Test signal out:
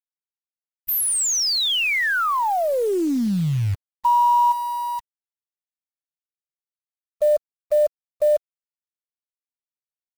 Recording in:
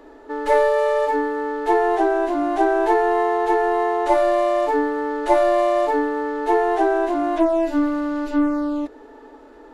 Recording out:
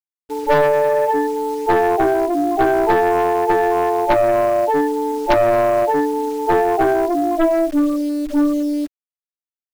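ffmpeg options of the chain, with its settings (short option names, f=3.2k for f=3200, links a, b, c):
-af "afftfilt=real='re*gte(hypot(re,im),0.224)':imag='im*gte(hypot(re,im),0.224)':win_size=1024:overlap=0.75,aeval=exprs='0.631*(cos(1*acos(clip(val(0)/0.631,-1,1)))-cos(1*PI/2))+0.0282*(cos(3*acos(clip(val(0)/0.631,-1,1)))-cos(3*PI/2))+0.1*(cos(5*acos(clip(val(0)/0.631,-1,1)))-cos(5*PI/2))+0.178*(cos(6*acos(clip(val(0)/0.631,-1,1)))-cos(6*PI/2))+0.112*(cos(8*acos(clip(val(0)/0.631,-1,1)))-cos(8*PI/2))':c=same,acrusher=bits=7:dc=4:mix=0:aa=0.000001"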